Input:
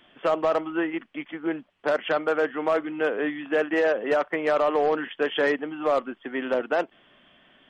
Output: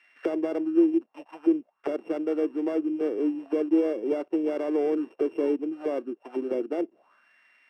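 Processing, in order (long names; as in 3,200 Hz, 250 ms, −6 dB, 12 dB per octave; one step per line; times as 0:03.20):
samples sorted by size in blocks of 16 samples
envelope filter 340–2,100 Hz, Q 4.8, down, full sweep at −25.5 dBFS
level +8 dB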